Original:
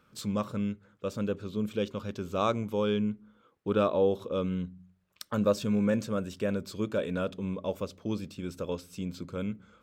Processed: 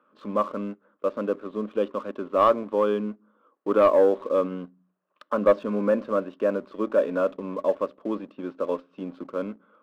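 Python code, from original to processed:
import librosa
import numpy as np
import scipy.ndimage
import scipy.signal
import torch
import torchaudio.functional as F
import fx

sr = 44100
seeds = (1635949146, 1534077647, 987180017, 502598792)

y = fx.cabinet(x, sr, low_hz=240.0, low_slope=24, high_hz=2600.0, hz=(290.0, 590.0, 1100.0, 2200.0), db=(5, 8, 10, -9))
y = fx.leveller(y, sr, passes=1)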